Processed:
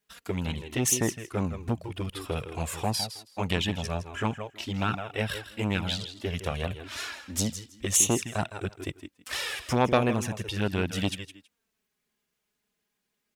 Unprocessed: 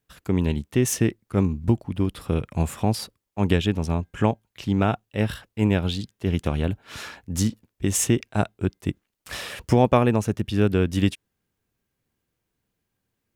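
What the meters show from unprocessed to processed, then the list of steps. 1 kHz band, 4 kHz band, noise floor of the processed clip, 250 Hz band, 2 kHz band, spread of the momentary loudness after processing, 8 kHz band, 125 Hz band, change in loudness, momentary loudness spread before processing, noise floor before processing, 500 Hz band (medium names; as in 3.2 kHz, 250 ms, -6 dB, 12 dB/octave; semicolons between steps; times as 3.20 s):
-3.5 dB, +1.5 dB, -81 dBFS, -8.0 dB, 0.0 dB, 12 LU, +2.5 dB, -8.0 dB, -5.0 dB, 11 LU, -80 dBFS, -6.0 dB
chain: tilt EQ +2.5 dB/octave; on a send: feedback delay 161 ms, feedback 17%, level -12 dB; on the sum: touch-sensitive flanger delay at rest 4.8 ms, full sweep at -15.5 dBFS; treble shelf 7.8 kHz -10 dB; transformer saturation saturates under 1.1 kHz; trim +2.5 dB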